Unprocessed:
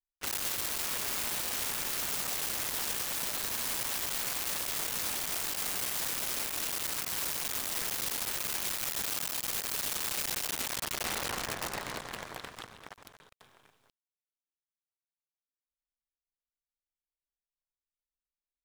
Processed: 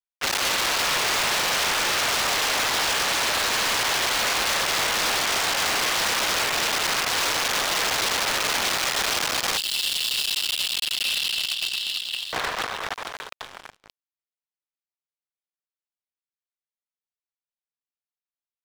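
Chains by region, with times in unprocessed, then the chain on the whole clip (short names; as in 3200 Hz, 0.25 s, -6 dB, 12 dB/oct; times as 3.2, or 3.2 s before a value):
9.57–12.33 brick-wall FIR high-pass 2600 Hz + bell 6200 Hz -15 dB 0.28 oct
whole clip: three-band isolator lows -16 dB, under 430 Hz, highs -23 dB, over 6300 Hz; sample leveller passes 5; gain +6 dB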